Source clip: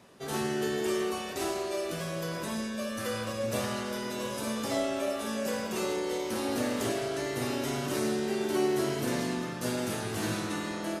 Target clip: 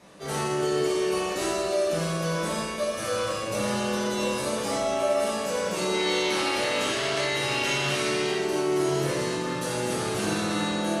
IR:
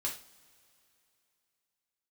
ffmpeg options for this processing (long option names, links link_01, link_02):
-filter_complex "[0:a]asettb=1/sr,asplit=3[link_01][link_02][link_03];[link_01]atrim=end=5.944[link_04];[link_02]atrim=start=5.94:end=8.34,asetpts=PTS-STARTPTS,afade=type=in:duration=0.004:curve=qsin,afade=type=out:start_time=2.396:duration=0.004:curve=qsin,equalizer=frequency=2700:width=0.55:gain=12[link_05];[link_03]atrim=start=8.336[link_06];[link_04][link_05]acrossfade=duration=0.004:curve1=hsin:curve2=qsin[link_07];[link_07][link_06]acrossfade=duration=0.004:curve1=qsin:curve2=hsin,alimiter=level_in=0.5dB:limit=-24dB:level=0:latency=1,volume=-0.5dB[link_08];[1:a]atrim=start_sample=2205,asetrate=22932,aresample=44100[link_09];[link_08][link_09]afir=irnorm=-1:irlink=0"